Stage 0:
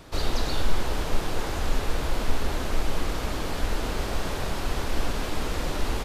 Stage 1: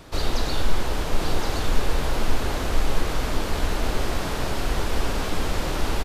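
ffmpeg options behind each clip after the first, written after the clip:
ffmpeg -i in.wav -af "aecho=1:1:1069:0.562,volume=2dB" out.wav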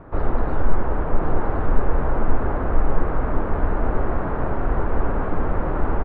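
ffmpeg -i in.wav -af "lowpass=frequency=1500:width=0.5412,lowpass=frequency=1500:width=1.3066,volume=3.5dB" out.wav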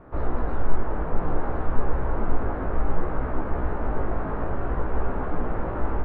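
ffmpeg -i in.wav -af "flanger=delay=15.5:depth=3.4:speed=0.59,volume=-1.5dB" out.wav

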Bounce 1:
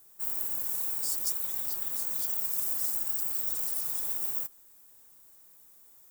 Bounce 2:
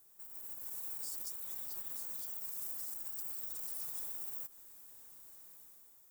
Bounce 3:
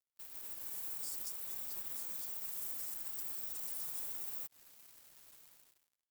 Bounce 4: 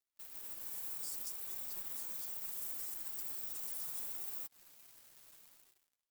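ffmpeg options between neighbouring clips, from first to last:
ffmpeg -i in.wav -af "acompressor=threshold=-35dB:ratio=6,alimiter=level_in=7.5dB:limit=-24dB:level=0:latency=1:release=50,volume=-7.5dB,dynaudnorm=framelen=100:gausssize=11:maxgain=7.5dB,volume=-6.5dB" out.wav
ffmpeg -i in.wav -af "acrusher=bits=7:mix=0:aa=0.5" out.wav
ffmpeg -i in.wav -af "flanger=delay=2.5:depth=6.6:regen=64:speed=0.7:shape=sinusoidal,volume=4dB" out.wav

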